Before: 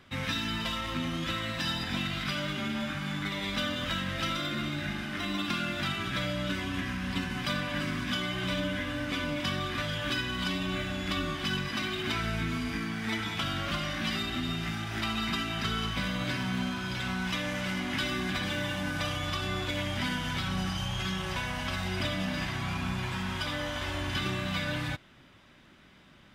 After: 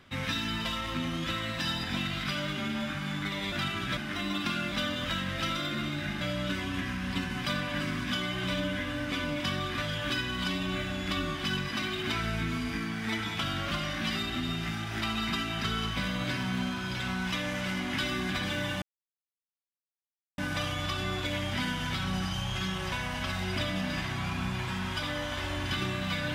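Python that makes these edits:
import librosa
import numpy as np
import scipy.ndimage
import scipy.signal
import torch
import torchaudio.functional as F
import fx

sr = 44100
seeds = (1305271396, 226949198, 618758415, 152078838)

y = fx.edit(x, sr, fx.swap(start_s=3.52, length_s=1.49, other_s=5.76, other_length_s=0.45),
    fx.insert_silence(at_s=18.82, length_s=1.56), tone=tone)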